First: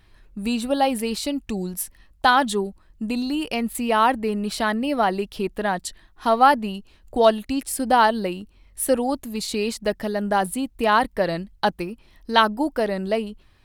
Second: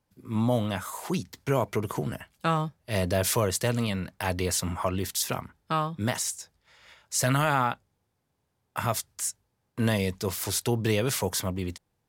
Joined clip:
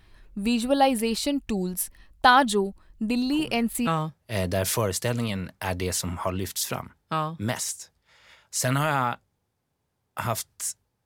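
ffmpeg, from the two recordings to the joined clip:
-filter_complex "[1:a]asplit=2[a][b];[0:a]apad=whole_dur=11.05,atrim=end=11.05,atrim=end=3.872[c];[b]atrim=start=2.458:end=9.64[d];[a]atrim=start=1.91:end=2.46,asetpts=PTS-STARTPTS,volume=-11.5dB,afade=t=in:d=0.004:c=hsin,afade=t=out:st=0.546:d=0.004:c=hsin,adelay=3320[e];[c][d]acrossfade=d=0.004:c1=hsin:c2=hsin[f];[f][e]amix=inputs=2:normalize=0"

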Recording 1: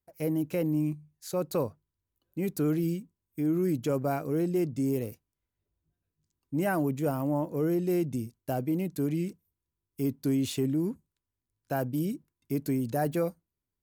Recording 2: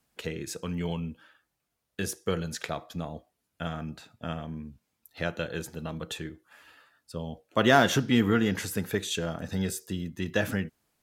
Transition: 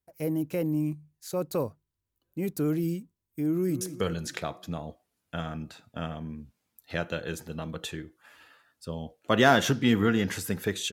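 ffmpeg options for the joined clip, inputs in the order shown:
-filter_complex "[0:a]apad=whole_dur=10.92,atrim=end=10.92,atrim=end=3.812[a];[1:a]atrim=start=2.078:end=9.19[b];[a][b]acrossfade=d=0.004:c1=hsin:c2=hsin,asplit=2[c][d];[d]afade=t=in:st=3.5:d=0.01,afade=t=out:st=3.81:d=0.01,aecho=0:1:190|380|570|760|950:0.266073|0.133036|0.0665181|0.0332591|0.0166295[e];[c][e]amix=inputs=2:normalize=0"

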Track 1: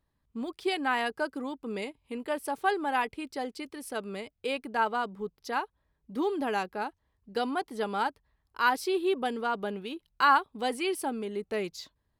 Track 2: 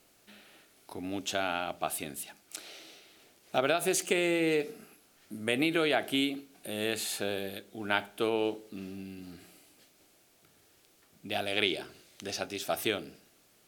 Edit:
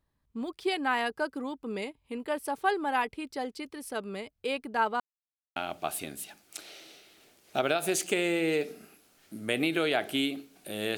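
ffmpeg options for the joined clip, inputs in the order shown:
-filter_complex "[0:a]apad=whole_dur=10.97,atrim=end=10.97,asplit=2[a][b];[a]atrim=end=5,asetpts=PTS-STARTPTS,afade=t=out:st=4.996:d=0.004:c=hsin[c];[b]atrim=start=5:end=5.56,asetpts=PTS-STARTPTS,volume=0[d];[1:a]atrim=start=1.55:end=6.96,asetpts=PTS-STARTPTS,afade=t=in:d=0.004:c=hsin[e];[c][d][e]concat=n=3:v=0:a=1"

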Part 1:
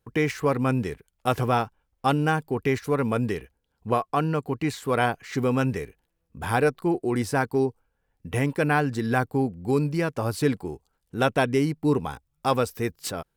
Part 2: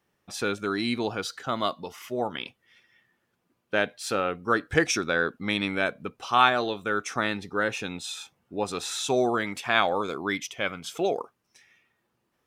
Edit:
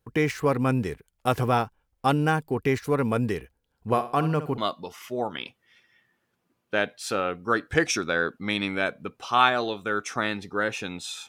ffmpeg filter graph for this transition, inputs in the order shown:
-filter_complex "[0:a]asettb=1/sr,asplit=3[a][b][c];[a]atrim=end=3.654[d];[b]atrim=start=3.65:end=4.58,asetpts=PTS-STARTPTS,afade=t=in:d=0.004:c=qsin,afade=t=out:st=0.926:d=0.004:c=qsin,aecho=1:1:64|128|192:0.251|0.0829|0.0274,atrim=end_sample=41013[e];[c]atrim=start=4.576[f];[d][e]acrossfade=d=0.004:c1=hsin:c2=qsin[g];[g][f]acrossfade=d=0.004:c1=qsin:c2=hsin,apad=whole_dur=11.28,atrim=end=11.28,atrim=end=4.582[h];[1:a]atrim=start=1.578:end=8.28[i];[h][i]acrossfade=d=0.004:c1=hsin:c2=hsin"

